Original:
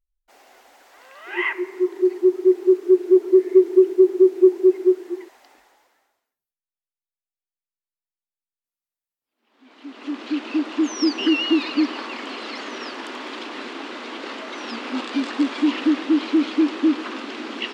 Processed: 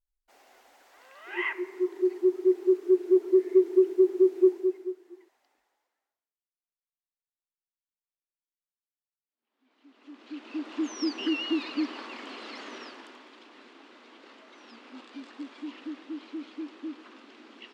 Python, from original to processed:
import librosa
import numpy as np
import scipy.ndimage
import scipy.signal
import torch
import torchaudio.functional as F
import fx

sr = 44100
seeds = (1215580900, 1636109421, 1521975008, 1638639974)

y = fx.gain(x, sr, db=fx.line((4.48, -7.0), (4.97, -19.5), (10.08, -19.5), (10.76, -9.5), (12.75, -9.5), (13.3, -19.5)))